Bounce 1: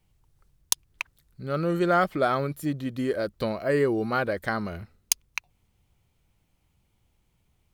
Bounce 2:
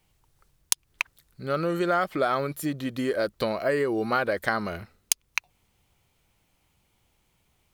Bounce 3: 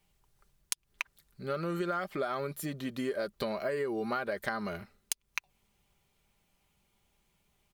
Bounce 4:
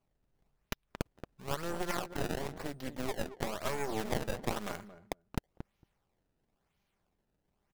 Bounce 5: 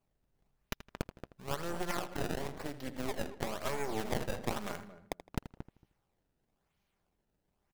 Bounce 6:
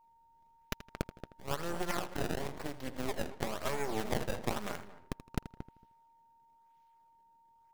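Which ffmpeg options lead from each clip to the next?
-af "acompressor=threshold=0.0562:ratio=6,lowshelf=f=270:g=-9.5,volume=2"
-af "aecho=1:1:5:0.42,acompressor=threshold=0.0562:ratio=4,volume=0.562"
-filter_complex "[0:a]acrusher=samples=23:mix=1:aa=0.000001:lfo=1:lforange=36.8:lforate=0.99,asplit=2[s0][s1];[s1]adelay=227,lowpass=f=1000:p=1,volume=0.355,asplit=2[s2][s3];[s3]adelay=227,lowpass=f=1000:p=1,volume=0.16[s4];[s0][s2][s4]amix=inputs=3:normalize=0,aeval=exprs='0.211*(cos(1*acos(clip(val(0)/0.211,-1,1)))-cos(1*PI/2))+0.0944*(cos(6*acos(clip(val(0)/0.211,-1,1)))-cos(6*PI/2))':c=same,volume=0.473"
-filter_complex "[0:a]asplit=2[s0][s1];[s1]adelay=81,lowpass=f=4900:p=1,volume=0.211,asplit=2[s2][s3];[s3]adelay=81,lowpass=f=4900:p=1,volume=0.33,asplit=2[s4][s5];[s5]adelay=81,lowpass=f=4900:p=1,volume=0.33[s6];[s0][s2][s4][s6]amix=inputs=4:normalize=0,volume=0.891"
-af "aeval=exprs='abs(val(0))':c=same,aeval=exprs='val(0)+0.000631*sin(2*PI*920*n/s)':c=same,volume=1.12"

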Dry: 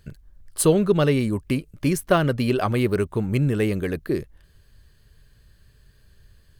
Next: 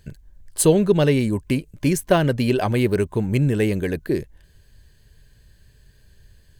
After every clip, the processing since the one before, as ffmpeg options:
-af "superequalizer=10b=0.447:15b=1.41,volume=1.26"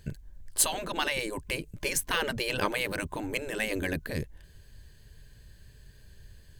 -af "afftfilt=real='re*lt(hypot(re,im),0.316)':imag='im*lt(hypot(re,im),0.316)':win_size=1024:overlap=0.75"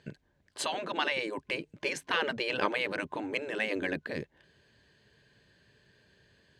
-af "highpass=220,lowpass=3800"

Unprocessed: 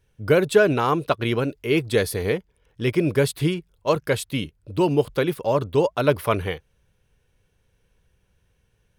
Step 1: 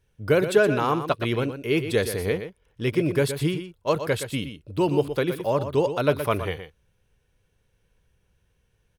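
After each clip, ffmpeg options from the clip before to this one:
-af "aecho=1:1:120:0.316,volume=0.75"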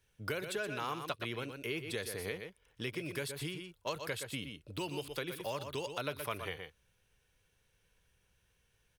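-filter_complex "[0:a]acrossover=split=96|1900[s0][s1][s2];[s0]acompressor=threshold=0.00355:ratio=4[s3];[s1]acompressor=threshold=0.0224:ratio=4[s4];[s2]acompressor=threshold=0.00631:ratio=4[s5];[s3][s4][s5]amix=inputs=3:normalize=0,tiltshelf=f=890:g=-5,volume=0.668"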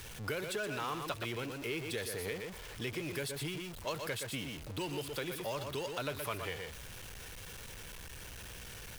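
-af "aeval=exprs='val(0)+0.5*0.0106*sgn(val(0))':c=same,volume=0.794"

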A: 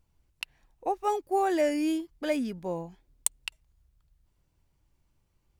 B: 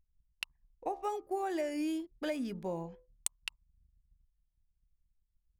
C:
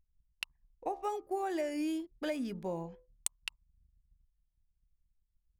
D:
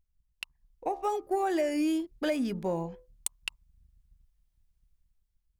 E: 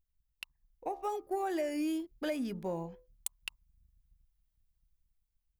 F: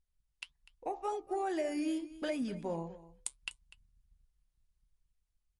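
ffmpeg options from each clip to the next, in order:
-af "acompressor=threshold=0.0316:ratio=6,bandreject=f=71.79:t=h:w=4,bandreject=f=143.58:t=h:w=4,bandreject=f=215.37:t=h:w=4,bandreject=f=287.16:t=h:w=4,bandreject=f=358.95:t=h:w=4,bandreject=f=430.74:t=h:w=4,bandreject=f=502.53:t=h:w=4,bandreject=f=574.32:t=h:w=4,bandreject=f=646.11:t=h:w=4,bandreject=f=717.9:t=h:w=4,bandreject=f=789.69:t=h:w=4,bandreject=f=861.48:t=h:w=4,bandreject=f=933.27:t=h:w=4,bandreject=f=1005.06:t=h:w=4,bandreject=f=1076.85:t=h:w=4,bandreject=f=1148.64:t=h:w=4,bandreject=f=1220.43:t=h:w=4,bandreject=f=1292.22:t=h:w=4,anlmdn=0.0001,volume=0.841"
-af anull
-af "dynaudnorm=f=230:g=7:m=2.24,asoftclip=type=tanh:threshold=0.15"
-af "aexciter=amount=1.1:drive=8:freq=11000,volume=0.531"
-af "flanger=delay=4.2:depth=4:regen=-72:speed=1.7:shape=sinusoidal,aecho=1:1:247:0.133,volume=1.58" -ar 44100 -c:a libmp3lame -b:a 48k

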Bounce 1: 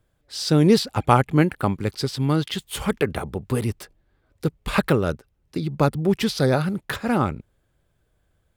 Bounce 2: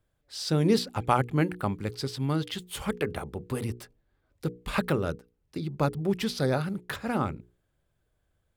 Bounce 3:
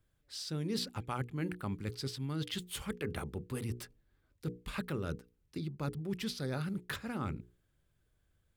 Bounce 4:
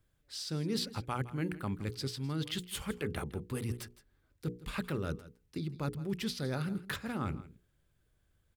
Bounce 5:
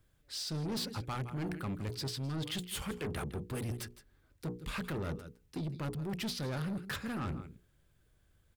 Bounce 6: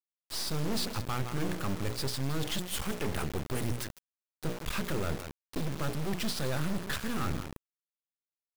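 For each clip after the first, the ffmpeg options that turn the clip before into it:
-af "bandreject=f=60:t=h:w=6,bandreject=f=120:t=h:w=6,bandreject=f=180:t=h:w=6,bandreject=f=240:t=h:w=6,bandreject=f=300:t=h:w=6,bandreject=f=360:t=h:w=6,bandreject=f=420:t=h:w=6,bandreject=f=480:t=h:w=6,volume=0.473"
-af "equalizer=f=690:t=o:w=1.3:g=-7,areverse,acompressor=threshold=0.0178:ratio=4,areverse"
-af "aecho=1:1:162:0.141,volume=1.19"
-af "asoftclip=type=tanh:threshold=0.0141,volume=1.58"
-af "aeval=exprs='val(0)+0.000447*(sin(2*PI*50*n/s)+sin(2*PI*2*50*n/s)/2+sin(2*PI*3*50*n/s)/3+sin(2*PI*4*50*n/s)/4+sin(2*PI*5*50*n/s)/5)':c=same,acrusher=bits=5:dc=4:mix=0:aa=0.000001,volume=2.66"

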